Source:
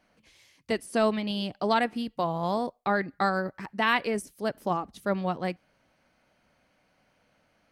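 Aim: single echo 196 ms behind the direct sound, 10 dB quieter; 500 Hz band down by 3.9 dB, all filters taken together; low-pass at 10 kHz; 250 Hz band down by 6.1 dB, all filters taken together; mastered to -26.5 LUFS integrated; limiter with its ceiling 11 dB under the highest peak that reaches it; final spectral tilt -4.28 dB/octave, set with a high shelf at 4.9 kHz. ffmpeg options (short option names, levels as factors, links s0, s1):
-af "lowpass=10000,equalizer=f=250:t=o:g=-7.5,equalizer=f=500:t=o:g=-3.5,highshelf=f=4900:g=3,alimiter=limit=0.075:level=0:latency=1,aecho=1:1:196:0.316,volume=2.51"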